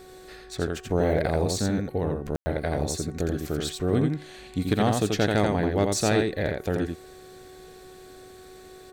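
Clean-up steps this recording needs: clip repair -13 dBFS; de-hum 371.7 Hz, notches 5; room tone fill 2.36–2.46; inverse comb 85 ms -4 dB

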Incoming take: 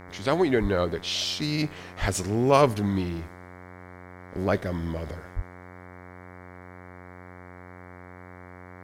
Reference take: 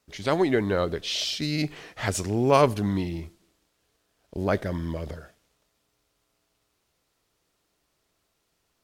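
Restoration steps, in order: de-hum 90.2 Hz, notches 25; de-plosive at 0.61/2/5.35

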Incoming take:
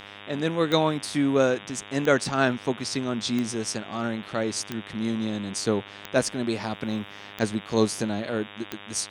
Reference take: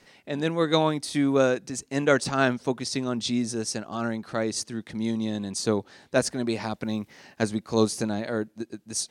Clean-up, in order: de-click; de-hum 101.2 Hz, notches 37

